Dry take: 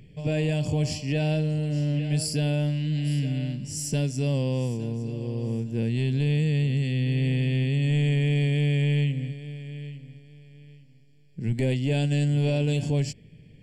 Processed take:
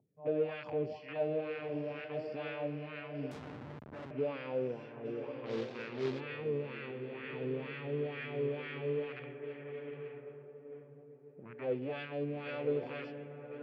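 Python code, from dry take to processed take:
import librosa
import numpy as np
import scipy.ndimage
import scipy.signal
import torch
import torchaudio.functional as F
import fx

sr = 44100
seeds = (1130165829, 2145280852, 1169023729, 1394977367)

p1 = fx.rattle_buzz(x, sr, strikes_db=-25.0, level_db=-27.0)
p2 = fx.wah_lfo(p1, sr, hz=2.1, low_hz=390.0, high_hz=1500.0, q=3.8)
p3 = 10.0 ** (-36.0 / 20.0) * np.tanh(p2 / 10.0 ** (-36.0 / 20.0))
p4 = p2 + F.gain(torch.from_numpy(p3), -9.0).numpy()
p5 = fx.low_shelf(p4, sr, hz=310.0, db=-11.5, at=(6.91, 7.33))
p6 = fx.echo_diffused(p5, sr, ms=1050, feedback_pct=44, wet_db=-8.0)
p7 = fx.quant_companded(p6, sr, bits=4, at=(5.45, 6.19), fade=0.02)
p8 = scipy.signal.sosfilt(scipy.signal.butter(4, 4600.0, 'lowpass', fs=sr, output='sos'), p7)
p9 = fx.echo_filtered(p8, sr, ms=134, feedback_pct=62, hz=1500.0, wet_db=-20.5)
p10 = fx.schmitt(p9, sr, flips_db=-43.5, at=(3.31, 4.11))
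p11 = scipy.signal.sosfilt(scipy.signal.butter(4, 96.0, 'highpass', fs=sr, output='sos'), p10)
p12 = fx.peak_eq(p11, sr, hz=170.0, db=-3.5, octaves=0.77)
p13 = fx.env_lowpass(p12, sr, base_hz=330.0, full_db=-36.5)
y = F.gain(torch.from_numpy(p13), 1.0).numpy()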